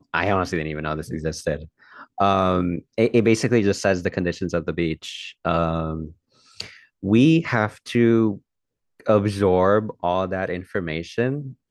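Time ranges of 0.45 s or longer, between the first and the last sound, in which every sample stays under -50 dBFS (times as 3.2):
8.39–9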